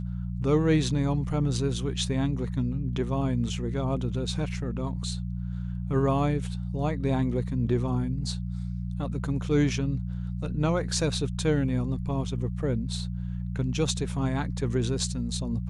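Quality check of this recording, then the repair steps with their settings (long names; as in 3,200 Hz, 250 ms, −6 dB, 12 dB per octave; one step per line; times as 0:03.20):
mains hum 60 Hz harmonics 3 −32 dBFS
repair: hum removal 60 Hz, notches 3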